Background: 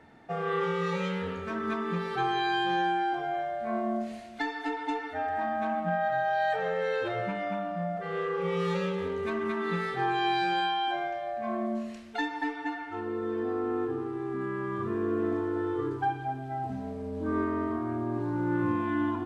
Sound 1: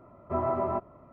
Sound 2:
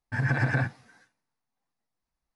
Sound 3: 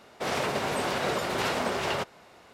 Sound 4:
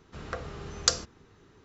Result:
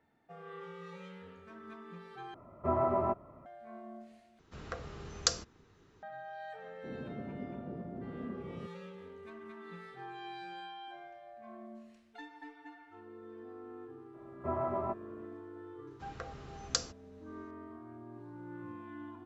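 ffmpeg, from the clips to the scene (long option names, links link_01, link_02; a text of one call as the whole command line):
ffmpeg -i bed.wav -i cue0.wav -i cue1.wav -i cue2.wav -i cue3.wav -filter_complex "[1:a]asplit=2[link_01][link_02];[4:a]asplit=2[link_03][link_04];[0:a]volume=-18dB[link_05];[3:a]lowpass=frequency=250:width_type=q:width=1.9[link_06];[link_05]asplit=3[link_07][link_08][link_09];[link_07]atrim=end=2.344[link_10];[link_01]atrim=end=1.12,asetpts=PTS-STARTPTS,volume=-1.5dB[link_11];[link_08]atrim=start=3.456:end=4.394[link_12];[link_03]atrim=end=1.64,asetpts=PTS-STARTPTS,volume=-5.5dB[link_13];[link_09]atrim=start=6.026[link_14];[link_06]atrim=end=2.53,asetpts=PTS-STARTPTS,volume=-10dB,afade=type=in:duration=0.004:curve=hsin,afade=type=out:start_time=2.526:duration=0.004:curve=hsin,adelay=6630[link_15];[link_02]atrim=end=1.12,asetpts=PTS-STARTPTS,volume=-6dB,afade=type=in:duration=0.004:curve=hsin,afade=type=out:start_time=1.116:duration=0.004:curve=hsin,adelay=14140[link_16];[link_04]atrim=end=1.64,asetpts=PTS-STARTPTS,volume=-8.5dB,afade=type=in:duration=0.004:curve=hsin,afade=type=out:start_time=1.636:duration=0.004:curve=hsin,adelay=15870[link_17];[link_10][link_11]acrossfade=duration=0.004:curve1=hsin:curve2=hsin[link_18];[link_18][link_12]acrossfade=duration=0.004:curve1=hsin:curve2=hsin[link_19];[link_19][link_13]acrossfade=duration=0.004:curve1=hsin:curve2=hsin[link_20];[link_20][link_14]acrossfade=duration=0.004:curve1=hsin:curve2=hsin[link_21];[link_21][link_15][link_16][link_17]amix=inputs=4:normalize=0" out.wav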